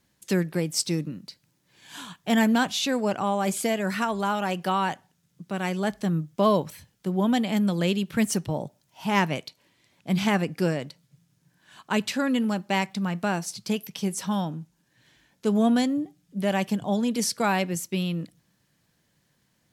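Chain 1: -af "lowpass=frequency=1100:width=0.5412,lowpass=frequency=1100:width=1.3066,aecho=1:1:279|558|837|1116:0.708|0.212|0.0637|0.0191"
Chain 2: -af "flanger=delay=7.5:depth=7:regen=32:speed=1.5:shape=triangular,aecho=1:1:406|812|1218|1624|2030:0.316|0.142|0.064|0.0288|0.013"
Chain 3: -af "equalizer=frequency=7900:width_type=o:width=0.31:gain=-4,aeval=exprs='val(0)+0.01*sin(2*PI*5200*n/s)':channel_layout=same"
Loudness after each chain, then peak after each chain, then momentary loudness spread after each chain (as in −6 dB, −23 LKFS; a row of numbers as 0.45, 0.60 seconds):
−26.0, −30.0, −26.0 LKFS; −9.0, −11.0, −7.5 dBFS; 12, 16, 16 LU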